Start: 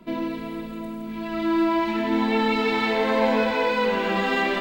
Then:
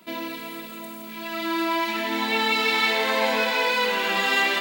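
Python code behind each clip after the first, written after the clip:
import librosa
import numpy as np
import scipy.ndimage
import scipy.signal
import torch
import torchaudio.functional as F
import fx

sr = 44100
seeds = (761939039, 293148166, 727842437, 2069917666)

y = fx.tilt_eq(x, sr, slope=4.0)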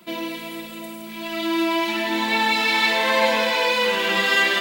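y = x + 0.52 * np.pad(x, (int(5.7 * sr / 1000.0), 0))[:len(x)]
y = y * 10.0 ** (2.0 / 20.0)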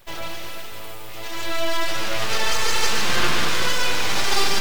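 y = np.abs(x)
y = fx.echo_split(y, sr, split_hz=760.0, low_ms=104, high_ms=147, feedback_pct=52, wet_db=-6)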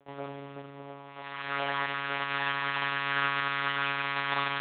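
y = fx.lpc_monotone(x, sr, seeds[0], pitch_hz=140.0, order=10)
y = fx.filter_sweep_bandpass(y, sr, from_hz=490.0, to_hz=1400.0, start_s=0.82, end_s=1.37, q=1.1)
y = y * 10.0 ** (-5.0 / 20.0)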